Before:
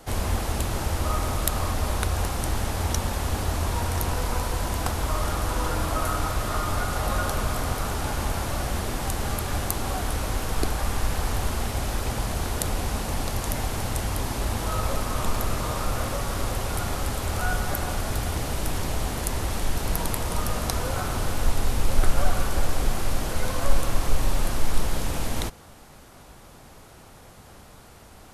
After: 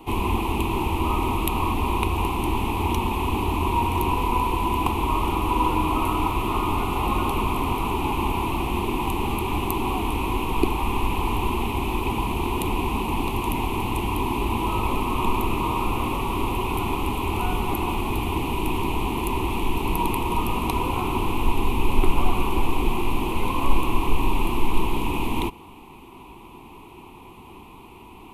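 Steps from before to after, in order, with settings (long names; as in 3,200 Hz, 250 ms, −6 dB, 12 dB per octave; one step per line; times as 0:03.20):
drawn EQ curve 140 Hz 0 dB, 370 Hz +12 dB, 580 Hz −11 dB, 990 Hz +14 dB, 1,600 Hz −20 dB, 2,500 Hz +12 dB, 5,200 Hz −15 dB, 7,500 Hz −11 dB, 14,000 Hz 0 dB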